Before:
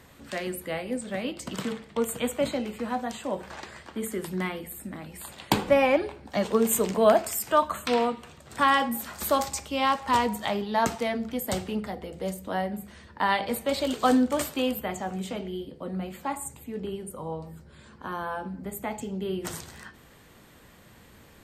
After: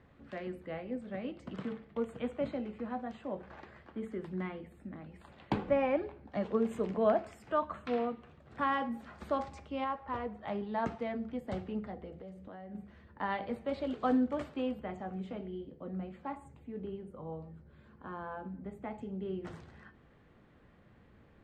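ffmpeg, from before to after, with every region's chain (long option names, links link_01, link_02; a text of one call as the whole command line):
ffmpeg -i in.wav -filter_complex "[0:a]asettb=1/sr,asplit=3[link_01][link_02][link_03];[link_01]atrim=end=9.844[link_04];[link_02]atrim=start=9.84:end=10.48,asetpts=PTS-STARTPTS,afade=type=in:duration=0.004:curve=qsin,afade=type=out:start_time=0.636:duration=0.004:curve=qsin,lowpass=frequency=1500:poles=1,equalizer=frequency=200:width=1.1:gain=-7.5[link_05];[link_03]atrim=start=10.476[link_06];[link_04][link_05]acrossfade=duration=0.004:curve1=hsin:curve2=qsin[link_07];[link_07][link_06]acrossfade=duration=0.004:curve1=qsin:curve2=hsin,asettb=1/sr,asplit=3[link_08][link_09][link_10];[link_08]atrim=end=12.194[link_11];[link_09]atrim=start=12.19:end=12.75,asetpts=PTS-STARTPTS,afade=type=in:duration=0.004:curve=qsin,afade=type=out:start_time=0.556:duration=0.004:curve=qsin,highpass=41,acompressor=threshold=-36dB:ratio=6:attack=3.2:release=140:knee=1:detection=peak[link_12];[link_10]atrim=start=12.746[link_13];[link_11][link_12]acrossfade=duration=0.004:curve1=hsin:curve2=qsin[link_14];[link_14][link_13]acrossfade=duration=0.004:curve1=qsin:curve2=hsin,lowpass=1900,equalizer=frequency=1200:width=0.41:gain=-3.5,bandreject=frequency=950:width=18,volume=-6dB" out.wav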